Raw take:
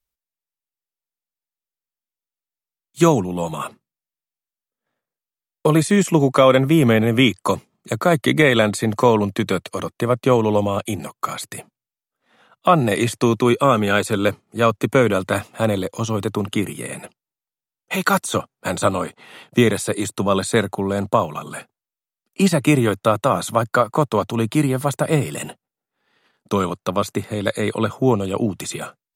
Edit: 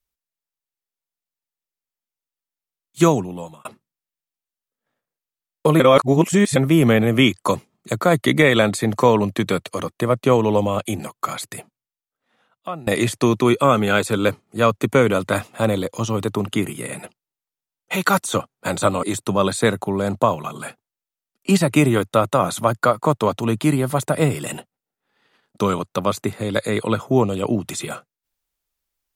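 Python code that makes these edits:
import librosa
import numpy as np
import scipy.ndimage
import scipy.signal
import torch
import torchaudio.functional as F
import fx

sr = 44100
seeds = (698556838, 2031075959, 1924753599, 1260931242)

y = fx.edit(x, sr, fx.fade_out_span(start_s=3.02, length_s=0.63),
    fx.reverse_span(start_s=5.8, length_s=0.76),
    fx.fade_out_to(start_s=11.39, length_s=1.48, floor_db=-22.0),
    fx.cut(start_s=19.03, length_s=0.91), tone=tone)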